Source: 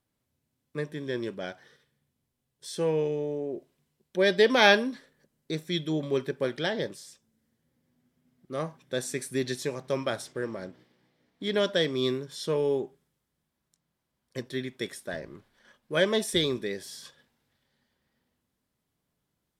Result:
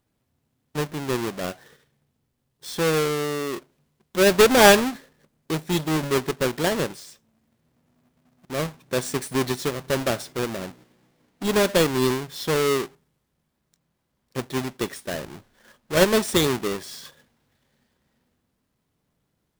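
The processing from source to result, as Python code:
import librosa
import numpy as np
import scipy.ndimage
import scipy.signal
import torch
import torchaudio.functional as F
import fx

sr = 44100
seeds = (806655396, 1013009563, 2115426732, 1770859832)

y = fx.halfwave_hold(x, sr)
y = y * librosa.db_to_amplitude(1.5)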